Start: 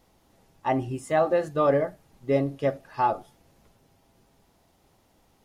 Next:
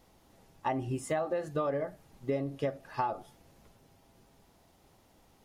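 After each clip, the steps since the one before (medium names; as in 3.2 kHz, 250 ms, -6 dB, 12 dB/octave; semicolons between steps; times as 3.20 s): compression 12:1, threshold -28 dBFS, peak gain reduction 12.5 dB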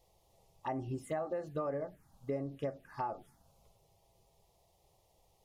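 touch-sensitive phaser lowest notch 240 Hz, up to 3.5 kHz, full sweep at -28 dBFS; trim -4.5 dB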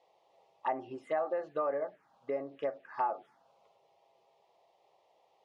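band-pass 510–2600 Hz; trim +6.5 dB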